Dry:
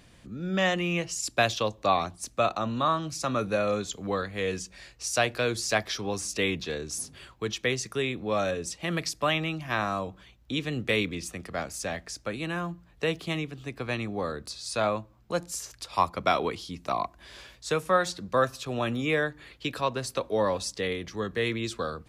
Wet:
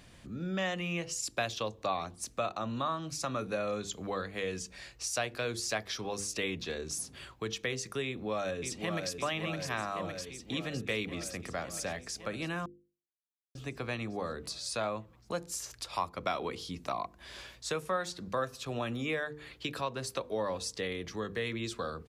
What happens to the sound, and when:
8.06–9.13 echo throw 0.56 s, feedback 70%, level -6 dB
12.66–13.55 mute
whole clip: notches 50/100/150/200/250/300/350/400/450/500 Hz; compressor 2:1, threshold -36 dBFS

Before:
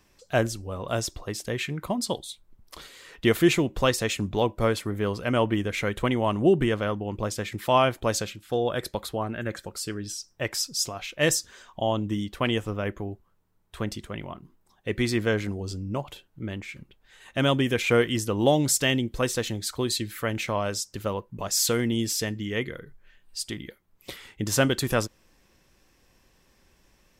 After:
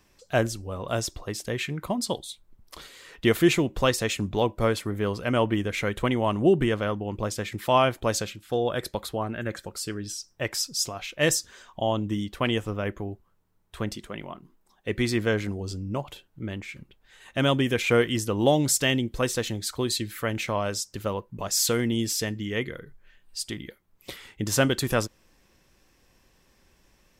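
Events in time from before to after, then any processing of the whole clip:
13.96–14.88 bell 85 Hz -13 dB 0.91 oct

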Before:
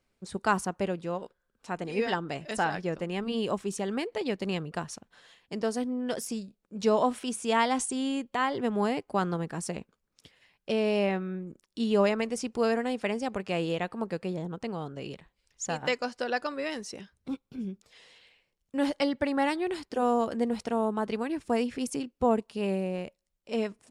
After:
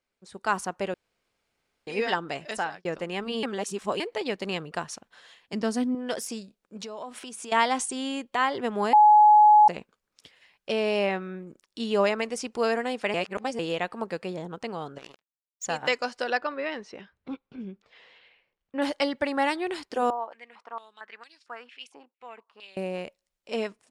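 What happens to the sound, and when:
0.94–1.87 room tone
2.45–2.85 fade out
3.43–4 reverse
5.53–5.95 resonant low shelf 340 Hz +6.5 dB, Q 1.5
6.77–7.52 compressor 10:1, threshold -36 dBFS
8.93–9.68 bleep 844 Hz -15 dBFS
13.14–13.59 reverse
14.98–15.64 power-law curve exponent 3
16.37–18.82 LPF 2700 Hz
20.1–22.77 stepped band-pass 4.4 Hz 870–4700 Hz
whole clip: high shelf 8800 Hz -6 dB; AGC gain up to 9.5 dB; low shelf 320 Hz -11.5 dB; gain -4.5 dB

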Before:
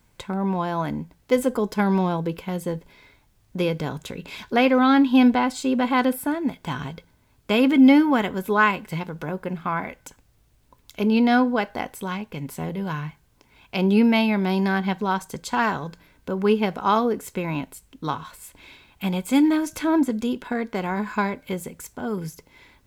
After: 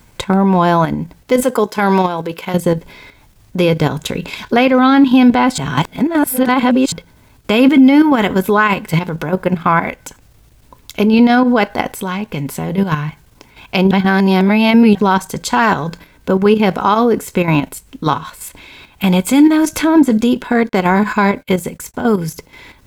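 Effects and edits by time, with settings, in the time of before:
1.43–2.54 HPF 530 Hz 6 dB/oct
5.58–6.92 reverse
13.91–14.95 reverse
20.69–21.94 gate -49 dBFS, range -33 dB
whole clip: level quantiser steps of 9 dB; maximiser +17 dB; gain -1 dB

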